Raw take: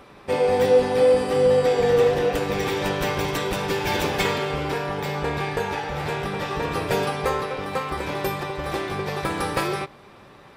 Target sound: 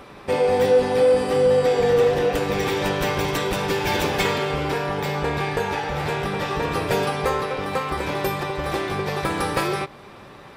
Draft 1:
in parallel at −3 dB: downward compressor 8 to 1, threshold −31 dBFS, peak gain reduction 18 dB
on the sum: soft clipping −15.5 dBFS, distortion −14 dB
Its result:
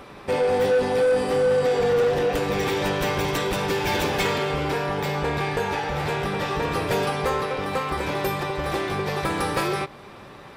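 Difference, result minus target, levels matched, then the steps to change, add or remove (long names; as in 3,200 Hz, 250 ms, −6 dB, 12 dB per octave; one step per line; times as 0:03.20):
soft clipping: distortion +14 dB
change: soft clipping −6 dBFS, distortion −28 dB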